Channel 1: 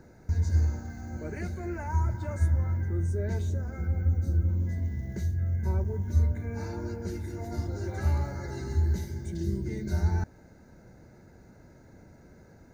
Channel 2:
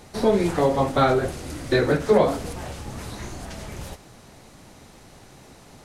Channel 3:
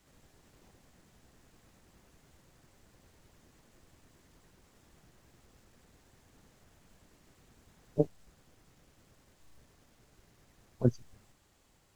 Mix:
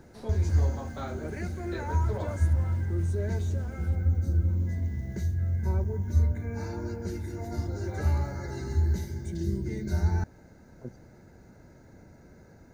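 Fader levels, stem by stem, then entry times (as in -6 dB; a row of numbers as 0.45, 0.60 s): +0.5, -19.5, -15.0 dB; 0.00, 0.00, 0.00 s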